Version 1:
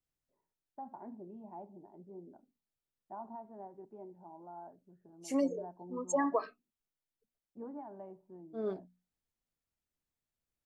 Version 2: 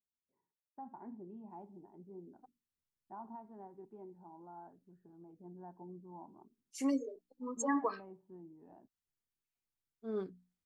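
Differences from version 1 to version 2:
second voice: entry +1.50 s; master: add peaking EQ 610 Hz -10.5 dB 0.51 oct

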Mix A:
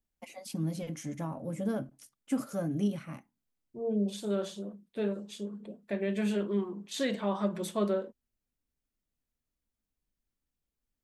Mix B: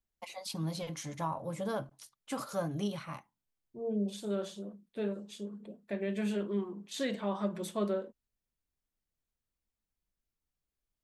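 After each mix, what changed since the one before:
first voice: add fifteen-band graphic EQ 250 Hz -11 dB, 1 kHz +10 dB, 4 kHz +10 dB; second voice -3.0 dB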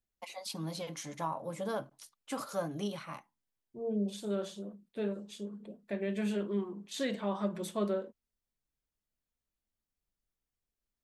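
first voice: add high-pass 190 Hz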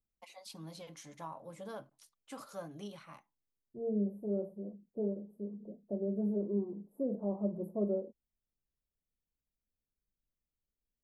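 first voice -9.0 dB; second voice: add inverse Chebyshev band-stop 2.4–5.7 kHz, stop band 80 dB

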